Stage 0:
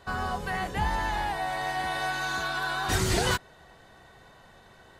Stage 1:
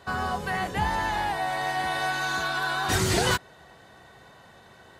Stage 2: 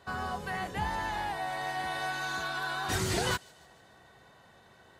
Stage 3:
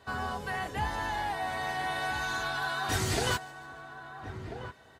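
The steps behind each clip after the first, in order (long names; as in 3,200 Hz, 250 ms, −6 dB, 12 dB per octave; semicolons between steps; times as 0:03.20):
high-pass filter 72 Hz; level +2.5 dB
delay with a high-pass on its return 148 ms, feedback 53%, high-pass 3,100 Hz, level −22 dB; level −6.5 dB
notch comb filter 180 Hz; slap from a distant wall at 230 metres, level −9 dB; level +2 dB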